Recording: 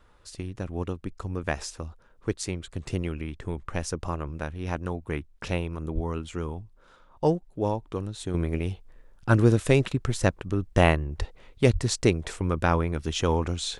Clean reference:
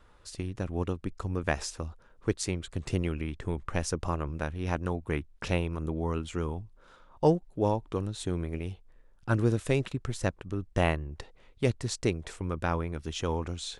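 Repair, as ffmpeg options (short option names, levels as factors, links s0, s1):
-filter_complex "[0:a]asplit=3[s0][s1][s2];[s0]afade=t=out:st=5.94:d=0.02[s3];[s1]highpass=f=140:w=0.5412,highpass=f=140:w=1.3066,afade=t=in:st=5.94:d=0.02,afade=t=out:st=6.06:d=0.02[s4];[s2]afade=t=in:st=6.06:d=0.02[s5];[s3][s4][s5]amix=inputs=3:normalize=0,asplit=3[s6][s7][s8];[s6]afade=t=out:st=11.18:d=0.02[s9];[s7]highpass=f=140:w=0.5412,highpass=f=140:w=1.3066,afade=t=in:st=11.18:d=0.02,afade=t=out:st=11.3:d=0.02[s10];[s8]afade=t=in:st=11.3:d=0.02[s11];[s9][s10][s11]amix=inputs=3:normalize=0,asplit=3[s12][s13][s14];[s12]afade=t=out:st=11.72:d=0.02[s15];[s13]highpass=f=140:w=0.5412,highpass=f=140:w=1.3066,afade=t=in:st=11.72:d=0.02,afade=t=out:st=11.84:d=0.02[s16];[s14]afade=t=in:st=11.84:d=0.02[s17];[s15][s16][s17]amix=inputs=3:normalize=0,asetnsamples=n=441:p=0,asendcmd='8.34 volume volume -6.5dB',volume=1"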